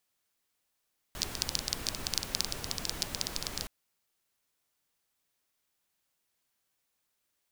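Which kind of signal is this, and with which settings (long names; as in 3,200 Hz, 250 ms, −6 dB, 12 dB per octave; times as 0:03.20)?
rain-like ticks over hiss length 2.52 s, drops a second 14, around 4,800 Hz, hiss −3 dB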